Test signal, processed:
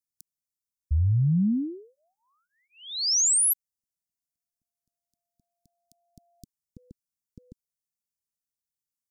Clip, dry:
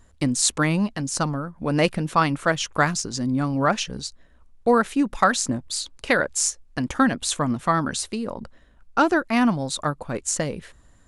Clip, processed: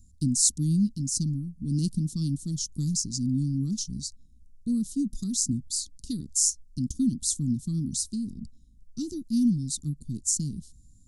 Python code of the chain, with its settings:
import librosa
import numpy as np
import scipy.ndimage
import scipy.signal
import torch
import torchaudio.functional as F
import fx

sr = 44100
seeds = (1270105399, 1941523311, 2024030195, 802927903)

y = scipy.signal.sosfilt(scipy.signal.cheby2(4, 50, [530.0, 2400.0], 'bandstop', fs=sr, output='sos'), x)